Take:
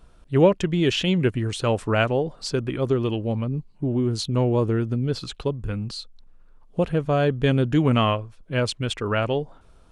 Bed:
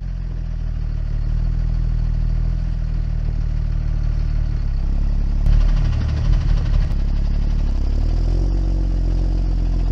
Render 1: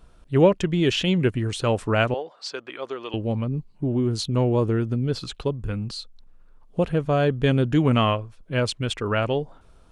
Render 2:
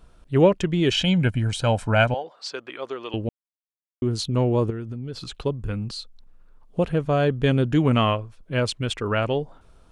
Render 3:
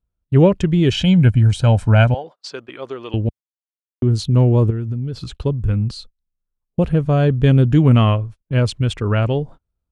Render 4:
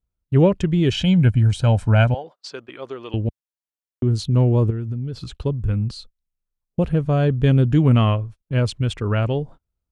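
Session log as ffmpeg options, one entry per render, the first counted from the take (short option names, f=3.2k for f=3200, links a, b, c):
-filter_complex "[0:a]asettb=1/sr,asplit=3[a][b][c];[a]atrim=end=2.144[d];[b]atrim=start=2.14:end=3.14,asetpts=PTS-STARTPTS,afade=t=in:d=0.004:c=qsin,afade=t=out:st=0.996:d=0.004:c=qsin,highpass=680,lowpass=5.4k[e];[c]atrim=start=3.136[f];[d][e]acrossfade=d=0.004:c1=hsin:c2=qsin[g];[g][f]acrossfade=d=0.004:c1=qsin:c2=hsin"
-filter_complex "[0:a]asettb=1/sr,asplit=3[a][b][c];[a]atrim=end=0.914[d];[b]atrim=start=0.91:end=2.24,asetpts=PTS-STARTPTS,afade=t=in:d=0.004:c=qsin,afade=t=out:st=1.326:d=0.004:c=qsin,aecho=1:1:1.3:0.64,atrim=end_sample=58653[e];[c]atrim=start=2.236[f];[d][e]acrossfade=d=0.004:c1=hsin:c2=qsin[g];[g][f]acrossfade=d=0.004:c1=qsin:c2=hsin,asettb=1/sr,asplit=3[h][i][j];[h]atrim=end=4.704[k];[i]atrim=start=4.7:end=5.36,asetpts=PTS-STARTPTS,afade=t=in:d=0.004:c=qsin,afade=t=out:st=0.656:d=0.004:c=qsin,acompressor=threshold=-31dB:ratio=3:attack=3.2:release=140:knee=1:detection=peak[l];[j]atrim=start=5.356[m];[k][l]acrossfade=d=0.004:c1=hsin:c2=qsin[n];[n][m]acrossfade=d=0.004:c1=qsin:c2=hsin,asplit=3[o][p][q];[o]atrim=end=3.29,asetpts=PTS-STARTPTS,afade=t=out:st=3.286:d=0.004:c=hsin[r];[p]atrim=start=3.29:end=4.02,asetpts=PTS-STARTPTS,volume=0[s];[q]atrim=start=4.02,asetpts=PTS-STARTPTS,afade=t=in:d=0.004:c=hsin[t];[r][s][t]concat=n=3:v=0:a=1"
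-af "agate=range=-33dB:threshold=-39dB:ratio=16:detection=peak,equalizer=f=72:w=0.38:g=13"
-af "volume=-3dB"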